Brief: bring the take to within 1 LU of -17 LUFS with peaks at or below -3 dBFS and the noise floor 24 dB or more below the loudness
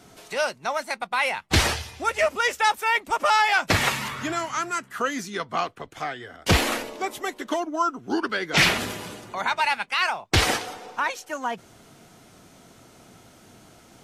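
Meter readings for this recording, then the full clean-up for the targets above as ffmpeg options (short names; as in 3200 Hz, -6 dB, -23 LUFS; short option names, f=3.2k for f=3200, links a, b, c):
loudness -24.5 LUFS; peak -6.5 dBFS; loudness target -17.0 LUFS
-> -af "volume=7.5dB,alimiter=limit=-3dB:level=0:latency=1"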